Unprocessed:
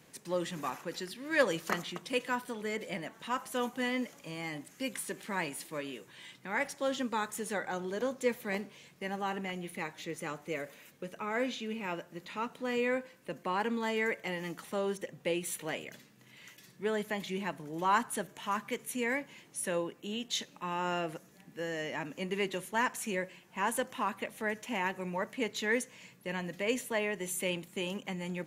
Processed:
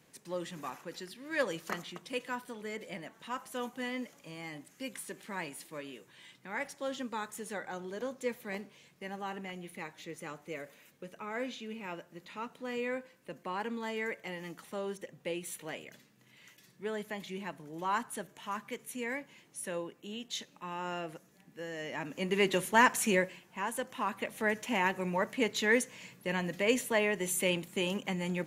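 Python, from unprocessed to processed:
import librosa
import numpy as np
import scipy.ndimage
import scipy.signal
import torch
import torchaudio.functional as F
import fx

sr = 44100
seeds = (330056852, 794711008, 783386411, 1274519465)

y = fx.gain(x, sr, db=fx.line((21.72, -4.5), (22.56, 7.0), (23.15, 7.0), (23.68, -4.5), (24.45, 3.5)))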